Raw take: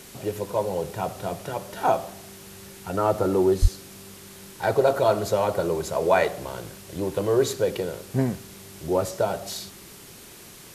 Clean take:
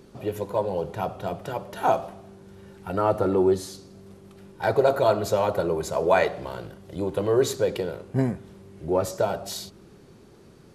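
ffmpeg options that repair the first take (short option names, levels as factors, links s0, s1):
-filter_complex "[0:a]asplit=3[s0][s1][s2];[s0]afade=t=out:st=3.61:d=0.02[s3];[s1]highpass=f=140:w=0.5412,highpass=f=140:w=1.3066,afade=t=in:st=3.61:d=0.02,afade=t=out:st=3.73:d=0.02[s4];[s2]afade=t=in:st=3.73:d=0.02[s5];[s3][s4][s5]amix=inputs=3:normalize=0,afwtdn=0.0056"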